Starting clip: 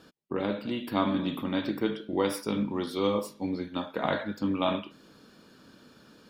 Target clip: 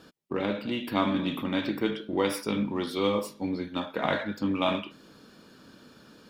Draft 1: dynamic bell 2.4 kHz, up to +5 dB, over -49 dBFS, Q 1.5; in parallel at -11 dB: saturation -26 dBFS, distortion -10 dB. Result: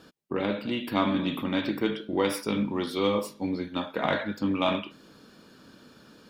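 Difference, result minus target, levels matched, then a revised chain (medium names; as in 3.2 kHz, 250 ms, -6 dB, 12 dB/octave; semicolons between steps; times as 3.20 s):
saturation: distortion -6 dB
dynamic bell 2.4 kHz, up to +5 dB, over -49 dBFS, Q 1.5; in parallel at -11 dB: saturation -37.5 dBFS, distortion -3 dB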